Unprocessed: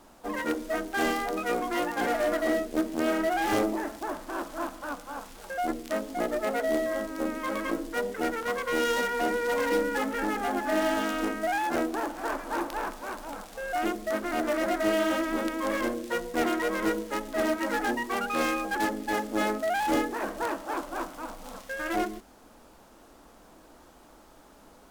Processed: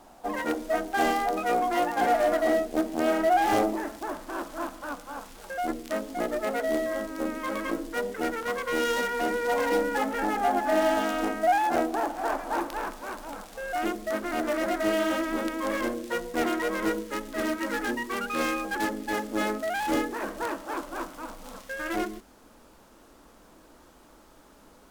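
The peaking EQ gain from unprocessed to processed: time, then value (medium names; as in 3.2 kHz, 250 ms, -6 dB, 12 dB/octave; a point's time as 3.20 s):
peaking EQ 740 Hz 0.39 oct
+8.5 dB
from 3.71 s -0.5 dB
from 9.45 s +9 dB
from 12.60 s -0.5 dB
from 17.00 s -10.5 dB
from 18.39 s -4 dB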